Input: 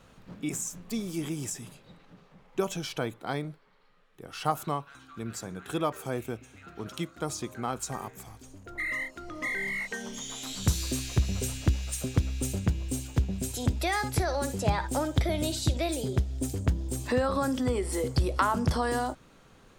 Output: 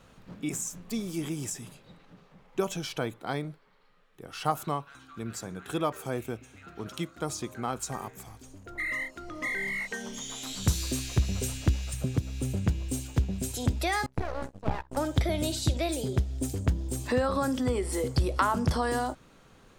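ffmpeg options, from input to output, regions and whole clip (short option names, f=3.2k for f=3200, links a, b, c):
-filter_complex "[0:a]asettb=1/sr,asplit=3[a][b][c];[a]atrim=end=11.934[d];[b]atrim=start=11.93:end=12.66,asetpts=PTS-STARTPTS,afade=t=in:d=0.004:c=qsin,afade=t=out:st=0.726:d=0.004:c=qsin,acrossover=split=340|1200|3600|7900[e][f][g][h][i];[e]acompressor=threshold=-39dB:ratio=3[j];[f]acompressor=threshold=-41dB:ratio=3[k];[g]acompressor=threshold=-52dB:ratio=3[l];[h]acompressor=threshold=-53dB:ratio=3[m];[i]acompressor=threshold=-50dB:ratio=3[n];[j][k][l][m][n]amix=inputs=5:normalize=0,equalizer=f=130:w=0.73:g=12[o];[c]atrim=start=12.656[p];[d][o]acrossfade=d=0.004:c1=hsin:c2=qsin[q];[q][p]acrossfade=d=0.004:c1=qsin:c2=hsin,asettb=1/sr,asplit=3[r][s][t];[r]atrim=end=14.064[u];[s]atrim=start=14.06:end=14.97,asetpts=PTS-STARTPTS,afade=t=in:d=0.004:c=qsin,afade=t=out:st=0.906:d=0.004:c=qsin,lowpass=f=1.3k:p=1,aeval=exprs='max(val(0),0)':c=same,agate=range=-22dB:threshold=-35dB:ratio=16:release=100:detection=peak[v];[t]atrim=start=14.966[w];[u][v]acrossfade=d=0.004:c1=hsin:c2=qsin[x];[x][w]acrossfade=d=0.004:c1=qsin:c2=hsin"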